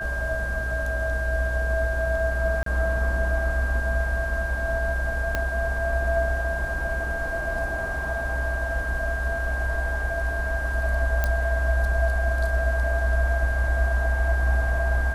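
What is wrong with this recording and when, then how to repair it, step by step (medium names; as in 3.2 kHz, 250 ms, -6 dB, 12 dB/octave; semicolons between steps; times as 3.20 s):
whine 1.6 kHz -29 dBFS
2.63–2.66 s: dropout 33 ms
5.35 s: pop -11 dBFS
11.24 s: pop -10 dBFS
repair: de-click; band-stop 1.6 kHz, Q 30; interpolate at 2.63 s, 33 ms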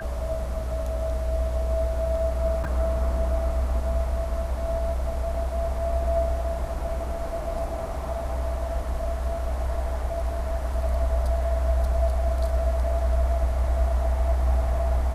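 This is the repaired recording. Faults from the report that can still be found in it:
5.35 s: pop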